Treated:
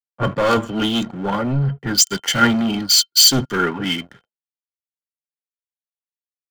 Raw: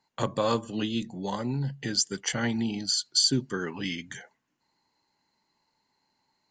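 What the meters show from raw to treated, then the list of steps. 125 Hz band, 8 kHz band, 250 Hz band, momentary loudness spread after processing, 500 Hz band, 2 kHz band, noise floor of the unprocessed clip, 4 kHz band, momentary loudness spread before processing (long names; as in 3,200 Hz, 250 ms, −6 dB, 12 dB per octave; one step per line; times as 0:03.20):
+10.0 dB, +12.5 dB, +9.5 dB, 12 LU, +9.0 dB, +13.0 dB, −77 dBFS, +11.5 dB, 11 LU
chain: low-pass that shuts in the quiet parts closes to 330 Hz, open at −23.5 dBFS
leveller curve on the samples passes 5
hollow resonant body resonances 1,400/3,100 Hz, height 16 dB, ringing for 75 ms
multiband upward and downward expander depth 100%
level −4 dB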